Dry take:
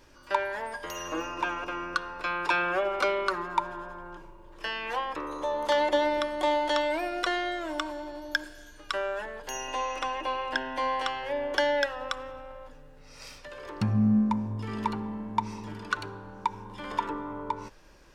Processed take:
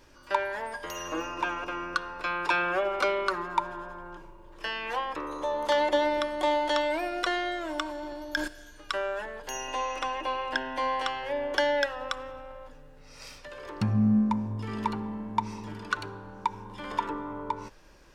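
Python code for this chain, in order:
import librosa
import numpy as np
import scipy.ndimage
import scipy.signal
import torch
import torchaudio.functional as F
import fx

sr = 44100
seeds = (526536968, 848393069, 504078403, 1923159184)

y = fx.transient(x, sr, attack_db=-3, sustain_db=10, at=(7.95, 8.48))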